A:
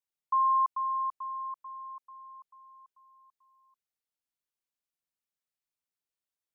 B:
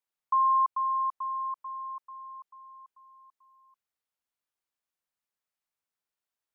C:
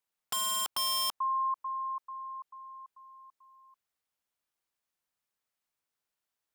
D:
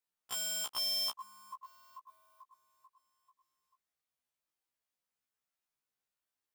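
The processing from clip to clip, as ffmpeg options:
ffmpeg -i in.wav -filter_complex "[0:a]asplit=2[link_01][link_02];[link_02]acompressor=threshold=-36dB:ratio=6,volume=-2.5dB[link_03];[link_01][link_03]amix=inputs=2:normalize=0,equalizer=frequency=1100:width=0.59:gain=6,volume=-6dB" out.wav
ffmpeg -i in.wav -af "aeval=exprs='(mod(26.6*val(0)+1,2)-1)/26.6':channel_layout=same,volume=2.5dB" out.wav
ffmpeg -i in.wav -af "acrusher=bits=6:mode=log:mix=0:aa=0.000001,afftfilt=real='re*1.73*eq(mod(b,3),0)':imag='im*1.73*eq(mod(b,3),0)':win_size=2048:overlap=0.75,volume=-2dB" out.wav

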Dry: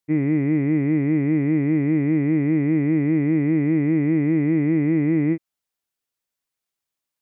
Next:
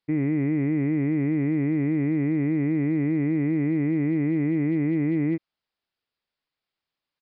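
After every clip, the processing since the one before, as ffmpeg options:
ffmpeg -i in.wav -af "alimiter=limit=-19dB:level=0:latency=1:release=46,aresample=11025,aeval=exprs='clip(val(0),-1,0.0708)':channel_layout=same,aresample=44100,volume=2.5dB" out.wav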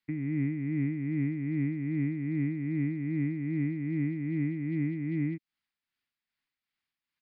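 ffmpeg -i in.wav -filter_complex "[0:a]equalizer=frequency=250:width_type=o:width=1:gain=5,equalizer=frequency=500:width_type=o:width=1:gain=-11,equalizer=frequency=2000:width_type=o:width=1:gain=7,acrossover=split=300|3000[link_01][link_02][link_03];[link_02]acompressor=threshold=-39dB:ratio=6[link_04];[link_01][link_04][link_03]amix=inputs=3:normalize=0,tremolo=f=2.5:d=0.48,volume=-3dB" out.wav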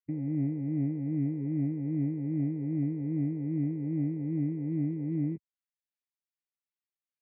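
ffmpeg -i in.wav -af "afwtdn=0.0251" out.wav

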